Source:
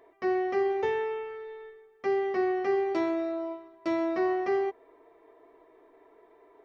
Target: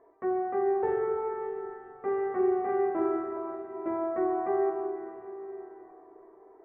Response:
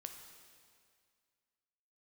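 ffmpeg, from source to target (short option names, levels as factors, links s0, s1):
-filter_complex "[0:a]lowpass=f=1500:w=0.5412,lowpass=f=1500:w=1.3066,asettb=1/sr,asplit=3[s0][s1][s2];[s0]atrim=end=0.834[s3];[s1]atrim=start=0.83:end=3.37,asetpts=PTS-STARTPTS,afade=t=in:d=0.004:c=qsin,afade=t=out:st=2.536:d=0.004:c=qsin,aecho=1:1:40|86|138.9|199.7|269.7:0.631|0.398|0.251|0.158|0.1,atrim=end_sample=112014[s4];[s2]atrim=start=3.366[s5];[s3][s4]acrossfade=d=0.004:c1=hsin:c2=qsin[s6];[s6][s5]acrossfade=d=0.004:c1=qsin:c2=hsin[s7];[1:a]atrim=start_sample=2205,asetrate=22491,aresample=44100[s8];[s7][s8]afir=irnorm=-1:irlink=0"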